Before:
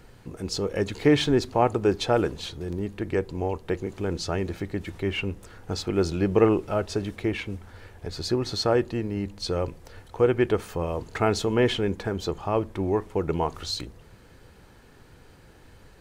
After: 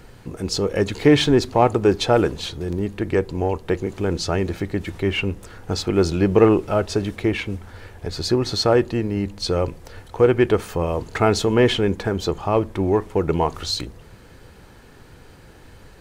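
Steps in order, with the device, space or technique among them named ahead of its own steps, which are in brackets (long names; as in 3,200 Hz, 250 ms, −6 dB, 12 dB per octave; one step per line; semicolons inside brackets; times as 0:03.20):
parallel distortion (in parallel at −12 dB: hard clipping −18.5 dBFS, distortion −11 dB)
on the sum: level +4 dB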